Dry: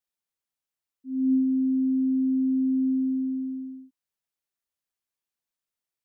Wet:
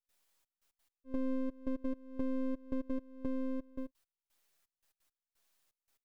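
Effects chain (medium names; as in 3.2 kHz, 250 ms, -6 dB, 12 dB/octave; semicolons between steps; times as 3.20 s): high-pass 310 Hz 12 dB/octave; trance gate ".xxxx..x.x.." 171 bpm -24 dB; compression 6:1, threshold -52 dBFS, peak gain reduction 24.5 dB; comb 7.3 ms; half-wave rectifier; trim +15.5 dB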